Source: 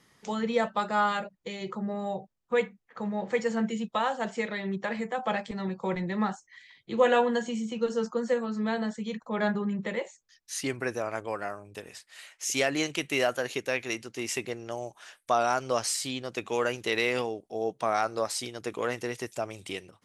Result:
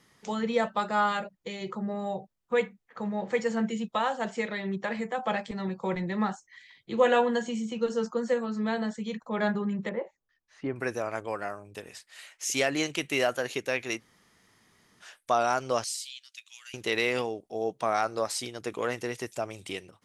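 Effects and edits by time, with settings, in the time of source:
0:09.89–0:10.76: low-pass filter 1,200 Hz
0:13.99–0:15.02: fill with room tone, crossfade 0.06 s
0:15.84–0:16.74: four-pole ladder high-pass 2,400 Hz, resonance 20%

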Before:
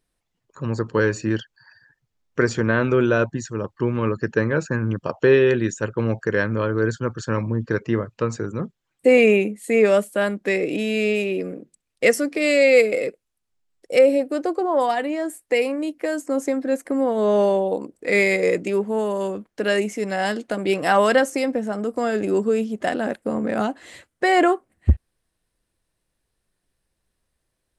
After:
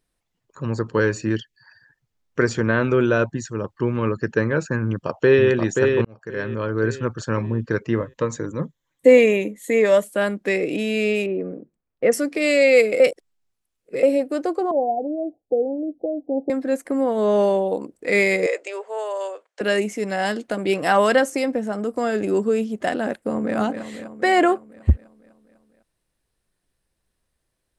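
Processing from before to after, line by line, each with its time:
0:01.35–0:01.62: gain on a spectral selection 470–1,700 Hz −15 dB
0:04.85–0:05.48: delay throw 530 ms, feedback 40%, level −4 dB
0:06.05–0:06.87: fade in
0:08.00–0:10.04: EQ curve with evenly spaced ripples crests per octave 1.1, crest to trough 8 dB
0:11.26–0:12.12: low-pass filter 1,200 Hz
0:13.00–0:14.03: reverse
0:14.71–0:16.50: Chebyshev low-pass filter 830 Hz, order 8
0:18.46–0:19.61: elliptic band-pass filter 520–8,400 Hz
0:23.16–0:23.57: delay throw 250 ms, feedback 65%, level −8 dB

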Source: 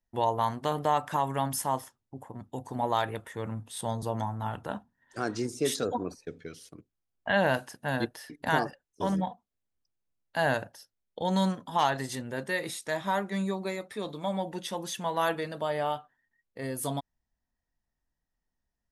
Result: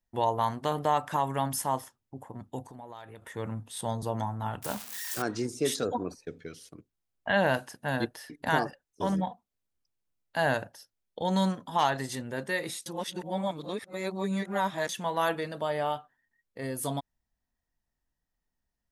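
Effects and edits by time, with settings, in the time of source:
0:02.64–0:03.22: downward compressor 3 to 1, threshold −47 dBFS
0:04.62–0:05.22: spike at every zero crossing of −25.5 dBFS
0:12.86–0:14.89: reverse

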